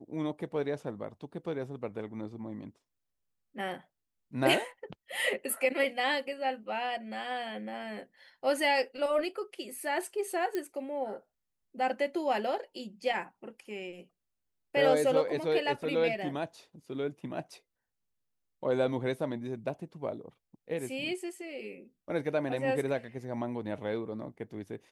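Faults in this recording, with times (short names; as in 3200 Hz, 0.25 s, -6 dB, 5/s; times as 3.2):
10.55 pop -20 dBFS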